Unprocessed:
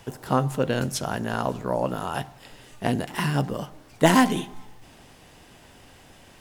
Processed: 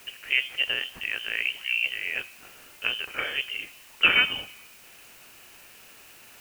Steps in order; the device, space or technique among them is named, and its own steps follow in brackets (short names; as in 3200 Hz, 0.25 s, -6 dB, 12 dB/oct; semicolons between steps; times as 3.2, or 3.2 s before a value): scrambled radio voice (BPF 390–3000 Hz; inverted band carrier 3300 Hz; white noise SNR 22 dB)